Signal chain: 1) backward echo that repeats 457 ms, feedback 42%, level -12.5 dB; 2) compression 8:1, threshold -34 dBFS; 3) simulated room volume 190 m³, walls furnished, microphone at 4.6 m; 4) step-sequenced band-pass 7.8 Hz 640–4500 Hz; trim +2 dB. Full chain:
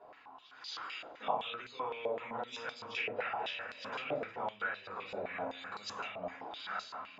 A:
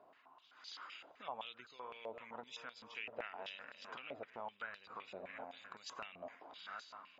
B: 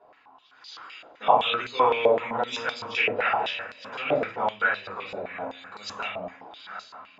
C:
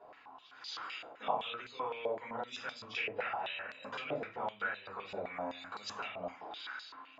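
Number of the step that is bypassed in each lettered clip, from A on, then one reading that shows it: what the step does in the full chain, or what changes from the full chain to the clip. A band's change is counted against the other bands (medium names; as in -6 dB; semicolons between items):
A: 3, 4 kHz band +2.5 dB; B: 2, crest factor change +2.0 dB; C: 1, momentary loudness spread change +1 LU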